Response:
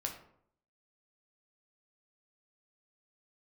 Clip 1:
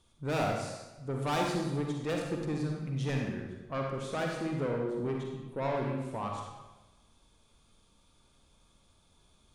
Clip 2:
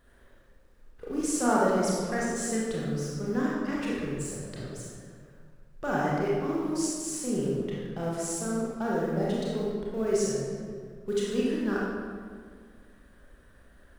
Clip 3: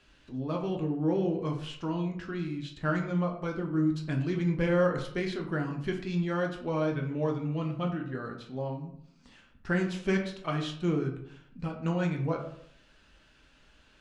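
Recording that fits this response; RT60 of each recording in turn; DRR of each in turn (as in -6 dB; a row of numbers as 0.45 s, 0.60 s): 3; 1.1 s, 1.8 s, 0.65 s; 0.0 dB, -6.0 dB, 1.0 dB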